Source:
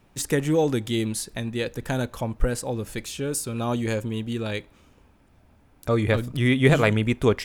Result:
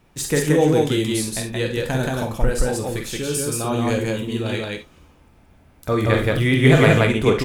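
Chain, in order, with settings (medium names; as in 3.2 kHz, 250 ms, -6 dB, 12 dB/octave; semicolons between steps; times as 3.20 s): loudspeakers at several distances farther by 16 m -6 dB, 60 m -1 dB; gated-style reverb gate 90 ms flat, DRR 6 dB; trim +1.5 dB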